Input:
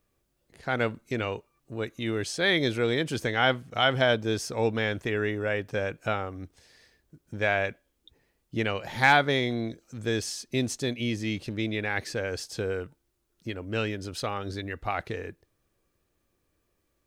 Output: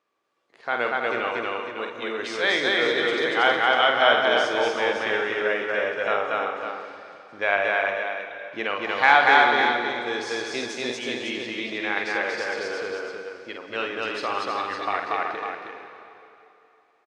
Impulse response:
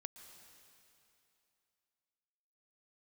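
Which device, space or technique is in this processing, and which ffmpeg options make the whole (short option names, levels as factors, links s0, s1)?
station announcement: -filter_complex "[0:a]highpass=450,lowpass=4200,equalizer=f=1100:t=o:w=0.52:g=6,aecho=1:1:49.56|236.2:0.501|0.891,aecho=1:1:317:0.501[s0];[1:a]atrim=start_sample=2205[s1];[s0][s1]afir=irnorm=-1:irlink=0,volume=2.24"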